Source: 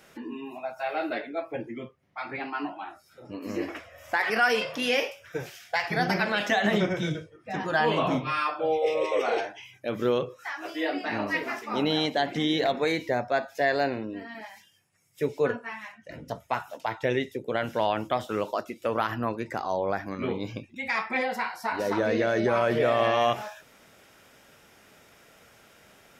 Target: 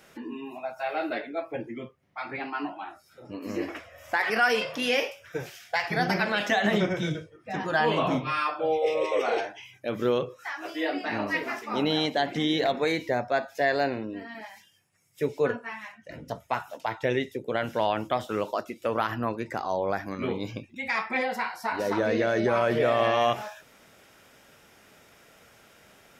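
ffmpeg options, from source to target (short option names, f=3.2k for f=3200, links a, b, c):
-filter_complex "[0:a]asettb=1/sr,asplit=3[a][b][c];[a]atrim=end=19.814[d];[b]atrim=start=19.81:end=20.51,asetpts=PTS-STARTPTS,afade=t=in:d=0.004:c=qsin,afade=t=out:st=0.696:d=0.004:c=qsin,highshelf=f=6.2k:g=6[e];[c]atrim=start=20.506[f];[d][e]acrossfade=d=0.004:c1=hsin:c2=qsin[g];[g][f]acrossfade=d=0.004:c1=qsin:c2=hsin"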